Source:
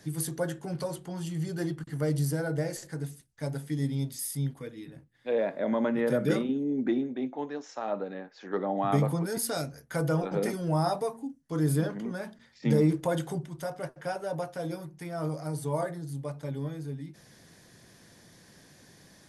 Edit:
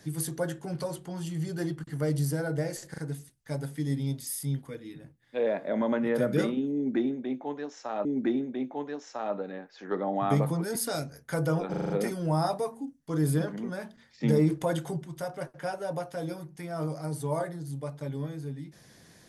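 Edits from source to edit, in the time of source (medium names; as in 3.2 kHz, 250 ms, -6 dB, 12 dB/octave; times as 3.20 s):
2.90 s: stutter 0.04 s, 3 plays
6.67–7.97 s: loop, 2 plays
10.32 s: stutter 0.04 s, 6 plays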